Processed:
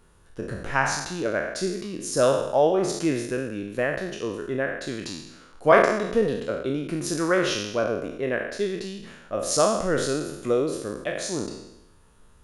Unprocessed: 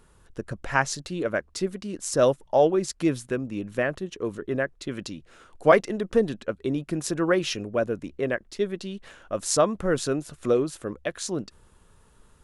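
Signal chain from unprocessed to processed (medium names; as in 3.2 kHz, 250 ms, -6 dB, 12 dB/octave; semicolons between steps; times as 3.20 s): spectral sustain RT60 0.89 s; band-stop 7.8 kHz, Q 10; trim -2 dB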